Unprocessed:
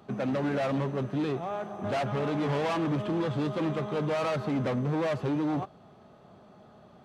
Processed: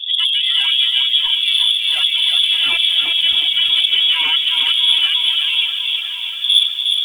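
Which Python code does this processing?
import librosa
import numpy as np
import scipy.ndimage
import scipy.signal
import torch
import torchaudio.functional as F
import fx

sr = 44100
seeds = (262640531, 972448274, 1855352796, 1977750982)

p1 = fx.dmg_wind(x, sr, seeds[0], corner_hz=110.0, level_db=-32.0)
p2 = fx.freq_invert(p1, sr, carrier_hz=3500)
p3 = fx.spec_gate(p2, sr, threshold_db=-25, keep='strong')
p4 = np.clip(p3, -10.0 ** (-23.0 / 20.0), 10.0 ** (-23.0 / 20.0))
p5 = p3 + (p4 * librosa.db_to_amplitude(-4.0))
p6 = fx.rider(p5, sr, range_db=4, speed_s=0.5)
p7 = p6 + 0.73 * np.pad(p6, (int(3.0 * sr / 1000.0), 0))[:len(p6)]
p8 = fx.echo_wet_bandpass(p7, sr, ms=995, feedback_pct=48, hz=1200.0, wet_db=-12)
p9 = fx.dynamic_eq(p8, sr, hz=1800.0, q=6.1, threshold_db=-45.0, ratio=4.0, max_db=-4)
p10 = fx.echo_feedback(p9, sr, ms=358, feedback_pct=32, wet_db=-5)
p11 = fx.echo_crushed(p10, sr, ms=643, feedback_pct=55, bits=7, wet_db=-11)
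y = p11 * librosa.db_to_amplitude(5.0)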